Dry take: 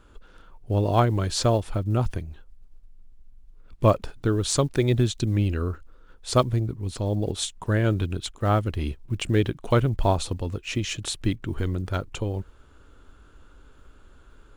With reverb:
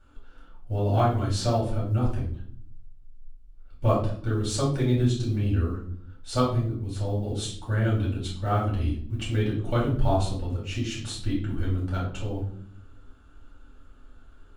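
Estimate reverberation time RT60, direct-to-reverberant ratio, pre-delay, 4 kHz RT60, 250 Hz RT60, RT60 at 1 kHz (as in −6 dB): 0.60 s, −7.0 dB, 3 ms, 0.40 s, 1.0 s, 0.50 s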